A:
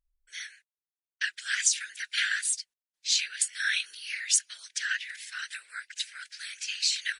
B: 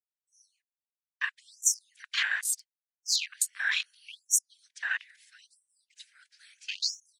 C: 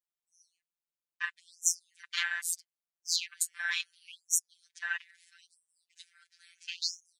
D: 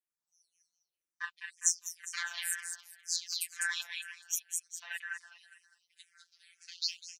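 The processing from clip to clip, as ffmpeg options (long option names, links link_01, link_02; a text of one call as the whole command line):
ffmpeg -i in.wav -af "afwtdn=0.0224,afftfilt=real='re*gte(b*sr/1024,210*pow(5600/210,0.5+0.5*sin(2*PI*0.75*pts/sr)))':imag='im*gte(b*sr/1024,210*pow(5600/210,0.5+0.5*sin(2*PI*0.75*pts/sr)))':win_size=1024:overlap=0.75" out.wav
ffmpeg -i in.wav -af "afftfilt=real='hypot(re,im)*cos(PI*b)':imag='0':win_size=1024:overlap=0.75" out.wav
ffmpeg -i in.wav -filter_complex "[0:a]aecho=1:1:203|406|609|812:0.501|0.185|0.0686|0.0254,asplit=2[link_01][link_02];[link_02]afreqshift=-2[link_03];[link_01][link_03]amix=inputs=2:normalize=1" out.wav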